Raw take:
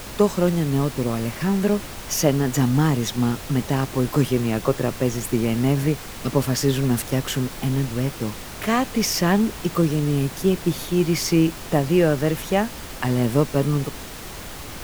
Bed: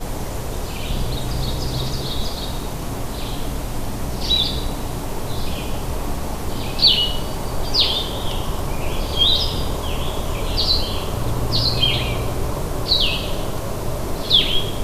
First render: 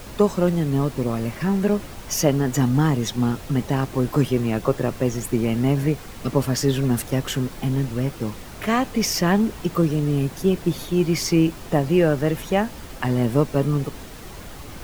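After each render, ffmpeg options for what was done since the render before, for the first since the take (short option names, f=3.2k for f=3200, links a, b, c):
-af "afftdn=nr=6:nf=-36"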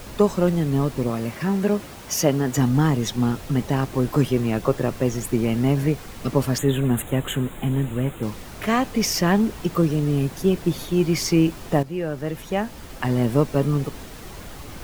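-filter_complex "[0:a]asettb=1/sr,asplit=3[a][b][c];[a]atrim=end=1.104[d];[b]atrim=start=1.1:end=2.58,asetpts=PTS-STARTPTS,afade=t=in:d=0.004:c=qsin,afade=t=out:st=1.476:d=0.004:c=qsin,highpass=f=110:p=1[e];[c]atrim=start=2.576[f];[d][e]acrossfade=d=0.004:c1=hsin:c2=qsin[g];[g][f]acrossfade=d=0.004:c1=qsin:c2=hsin,asettb=1/sr,asplit=3[h][i][j];[h]atrim=end=6.584[k];[i]atrim=start=6.58:end=8.23,asetpts=PTS-STARTPTS,afade=t=in:d=0.004:c=qsin,afade=t=out:st=1.646:d=0.004:c=qsin,asuperstop=centerf=5100:order=8:qfactor=1.7[l];[j]atrim=start=8.226[m];[k][l]acrossfade=d=0.004:c1=hsin:c2=qsin[n];[n][m]acrossfade=d=0.004:c1=qsin:c2=hsin,asplit=2[o][p];[o]atrim=end=11.83,asetpts=PTS-STARTPTS,afade=t=out:st=11.826:d=0.004:c=hsin:silence=0.223872[q];[p]atrim=start=11.83,asetpts=PTS-STARTPTS,afade=t=in:d=1.31:silence=0.223872[r];[q][r]concat=n=2:v=0:a=1"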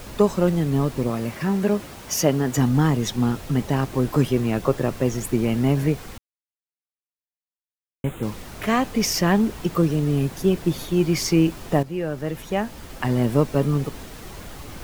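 -filter_complex "[0:a]asplit=3[a][b][c];[a]atrim=end=6.18,asetpts=PTS-STARTPTS,afade=t=out:st=6.176:d=0.004:c=hsin[d];[b]atrim=start=6.18:end=8.04,asetpts=PTS-STARTPTS,volume=0[e];[c]atrim=start=8.04,asetpts=PTS-STARTPTS,afade=t=in:d=0.004:c=hsin[f];[d][e][f]concat=n=3:v=0:a=1"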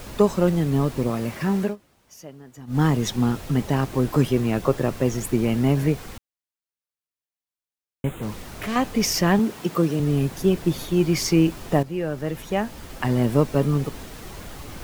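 -filter_complex "[0:a]asettb=1/sr,asplit=3[a][b][c];[a]atrim=end=8.124[d];[b]atrim=start=8.12:end=8.76,asetpts=PTS-STARTPTS,afade=t=in:d=0.004:c=qsin,afade=t=out:st=0.636:d=0.004:c=qsin,volume=24.5dB,asoftclip=hard,volume=-24.5dB[e];[c]atrim=start=8.756[f];[d][e]acrossfade=d=0.004:c1=hsin:c2=qsin[g];[g][f]acrossfade=d=0.004:c1=qsin:c2=hsin,asettb=1/sr,asplit=3[h][i][j];[h]atrim=end=9.394[k];[i]atrim=start=9.39:end=10,asetpts=PTS-STARTPTS,afade=t=in:d=0.004:c=qsin,afade=t=out:st=0.606:d=0.004:c=qsin,highpass=160[l];[j]atrim=start=9.996[m];[k][l]acrossfade=d=0.004:c1=hsin:c2=qsin[n];[n][m]acrossfade=d=0.004:c1=qsin:c2=hsin,asplit=3[o][p][q];[o]atrim=end=1.76,asetpts=PTS-STARTPTS,afade=t=out:st=1.61:d=0.15:silence=0.0794328[r];[p]atrim=start=1.76:end=2.67,asetpts=PTS-STARTPTS,volume=-22dB[s];[q]atrim=start=2.67,asetpts=PTS-STARTPTS,afade=t=in:d=0.15:silence=0.0794328[t];[r][s][t]concat=n=3:v=0:a=1"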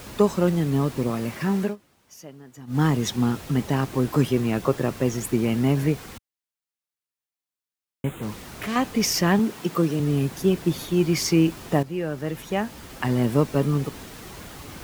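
-af "highpass=f=86:p=1,equalizer=f=600:t=o:w=0.89:g=-2.5"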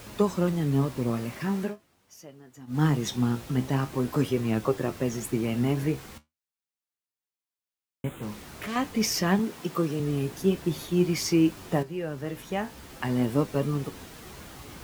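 -af "flanger=delay=8.7:depth=8.5:regen=62:speed=0.44:shape=triangular"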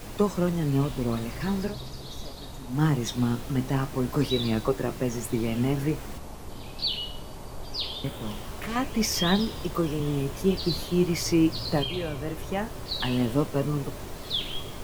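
-filter_complex "[1:a]volume=-15dB[a];[0:a][a]amix=inputs=2:normalize=0"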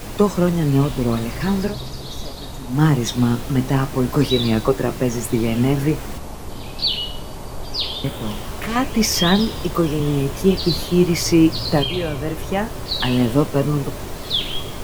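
-af "volume=8dB,alimiter=limit=-3dB:level=0:latency=1"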